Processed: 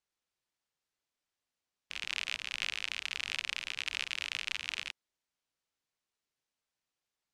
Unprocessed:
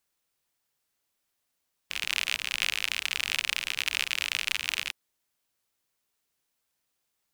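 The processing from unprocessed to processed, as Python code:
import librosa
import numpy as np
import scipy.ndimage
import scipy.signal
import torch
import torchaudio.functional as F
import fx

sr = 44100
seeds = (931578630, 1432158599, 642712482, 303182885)

y = scipy.signal.sosfilt(scipy.signal.butter(2, 6900.0, 'lowpass', fs=sr, output='sos'), x)
y = y * 10.0 ** (-7.0 / 20.0)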